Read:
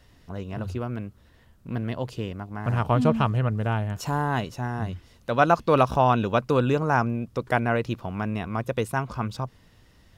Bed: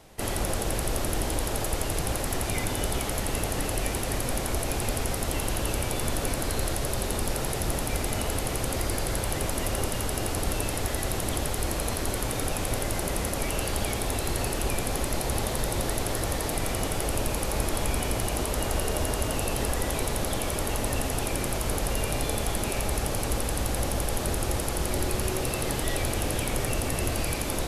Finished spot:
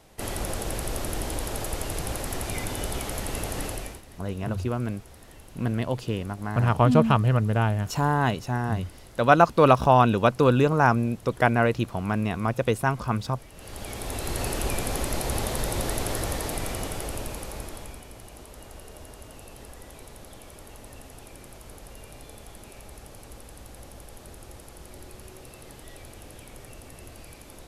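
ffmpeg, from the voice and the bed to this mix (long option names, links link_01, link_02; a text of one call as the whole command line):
ffmpeg -i stem1.wav -i stem2.wav -filter_complex "[0:a]adelay=3900,volume=2.5dB[link_01];[1:a]volume=18.5dB,afade=type=out:start_time=3.65:duration=0.37:silence=0.11885,afade=type=in:start_time=13.54:duration=0.96:silence=0.0891251,afade=type=out:start_time=16.13:duration=1.91:silence=0.141254[link_02];[link_01][link_02]amix=inputs=2:normalize=0" out.wav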